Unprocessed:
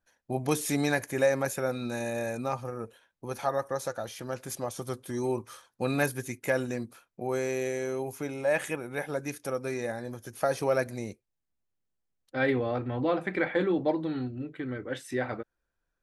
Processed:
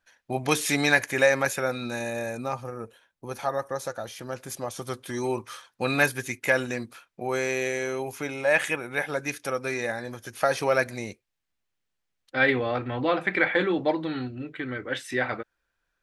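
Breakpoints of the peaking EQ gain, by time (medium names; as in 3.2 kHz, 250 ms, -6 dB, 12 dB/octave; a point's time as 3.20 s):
peaking EQ 2.5 kHz 2.9 oct
1.38 s +11.5 dB
2.30 s +2.5 dB
4.56 s +2.5 dB
5.07 s +10 dB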